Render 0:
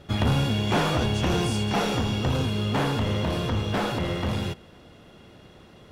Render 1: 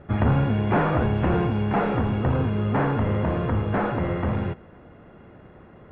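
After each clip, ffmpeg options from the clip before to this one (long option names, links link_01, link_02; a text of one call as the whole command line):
ffmpeg -i in.wav -af "lowpass=frequency=2000:width=0.5412,lowpass=frequency=2000:width=1.3066,volume=2.5dB" out.wav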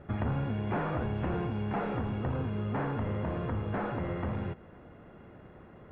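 ffmpeg -i in.wav -af "acompressor=threshold=-30dB:ratio=2,volume=-4dB" out.wav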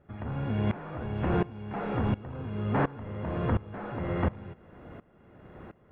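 ffmpeg -i in.wav -af "aeval=exprs='val(0)*pow(10,-21*if(lt(mod(-1.4*n/s,1),2*abs(-1.4)/1000),1-mod(-1.4*n/s,1)/(2*abs(-1.4)/1000),(mod(-1.4*n/s,1)-2*abs(-1.4)/1000)/(1-2*abs(-1.4)/1000))/20)':channel_layout=same,volume=8.5dB" out.wav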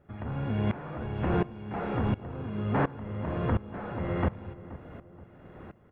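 ffmpeg -i in.wav -filter_complex "[0:a]asplit=2[link_01][link_02];[link_02]adelay=477,lowpass=frequency=1100:poles=1,volume=-15.5dB,asplit=2[link_03][link_04];[link_04]adelay=477,lowpass=frequency=1100:poles=1,volume=0.49,asplit=2[link_05][link_06];[link_06]adelay=477,lowpass=frequency=1100:poles=1,volume=0.49,asplit=2[link_07][link_08];[link_08]adelay=477,lowpass=frequency=1100:poles=1,volume=0.49[link_09];[link_01][link_03][link_05][link_07][link_09]amix=inputs=5:normalize=0" out.wav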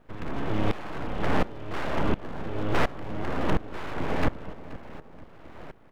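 ffmpeg -i in.wav -af "aeval=exprs='abs(val(0))':channel_layout=same,volume=5.5dB" out.wav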